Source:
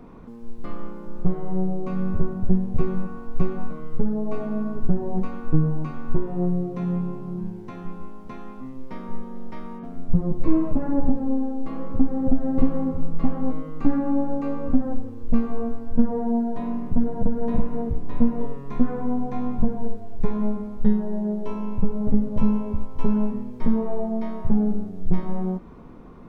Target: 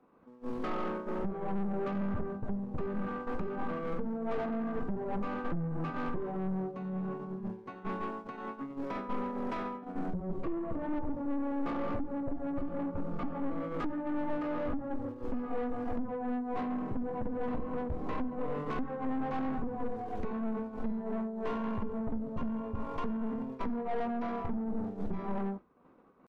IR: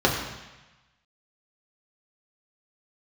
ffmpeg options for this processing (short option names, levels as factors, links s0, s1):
-filter_complex "[0:a]acrossover=split=110[s0][s1];[s1]acompressor=threshold=0.0141:ratio=6[s2];[s0][s2]amix=inputs=2:normalize=0,asetrate=46722,aresample=44100,atempo=0.943874,alimiter=limit=0.15:level=0:latency=1:release=341,agate=range=0.0224:threshold=0.0501:ratio=3:detection=peak,asplit=2[s3][s4];[s4]highpass=f=720:p=1,volume=50.1,asoftclip=type=tanh:threshold=0.15[s5];[s3][s5]amix=inputs=2:normalize=0,lowpass=f=1400:p=1,volume=0.501,volume=0.355"